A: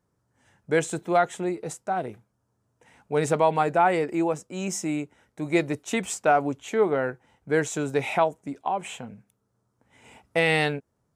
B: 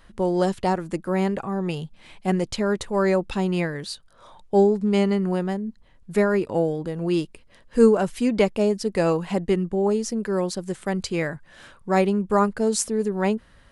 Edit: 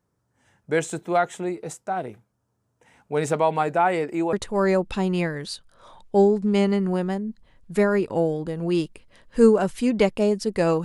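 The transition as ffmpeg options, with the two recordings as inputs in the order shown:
-filter_complex "[0:a]apad=whole_dur=10.84,atrim=end=10.84,atrim=end=4.332[a];[1:a]atrim=start=2.718:end=9.23[b];[a][b]acrossfade=d=0.004:c1=hsin:c2=hsin"

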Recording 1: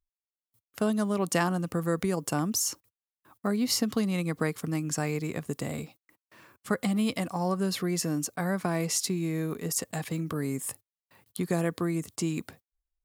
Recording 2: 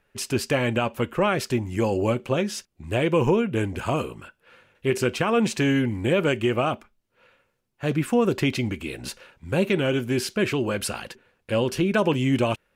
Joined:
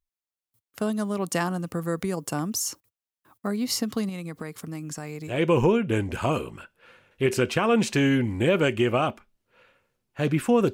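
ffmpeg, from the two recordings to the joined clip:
-filter_complex "[0:a]asettb=1/sr,asplit=3[a][b][c];[a]atrim=end=4.094[d];[b]atrim=start=4.09:end=5.42,asetpts=PTS-STARTPTS,afade=t=in:d=0.004:c=qsin,afade=t=out:st=1.326:d=0.004:c=qsin,acompressor=threshold=-33dB:ratio=2.5:attack=3.2:release=140:knee=1:detection=peak[e];[c]atrim=start=5.416[f];[d][e]acrossfade=d=0.004:c1=hsin:c2=qsin[g];[g][f]acrossfade=d=0.004:c1=qsin:c2=hsin,apad=whole_dur=10.73,atrim=end=10.73,atrim=end=5.42,asetpts=PTS-STARTPTS[h];[1:a]atrim=start=2.9:end=8.37,asetpts=PTS-STARTPTS[i];[h][i]acrossfade=d=0.16:c1=tri:c2=tri"

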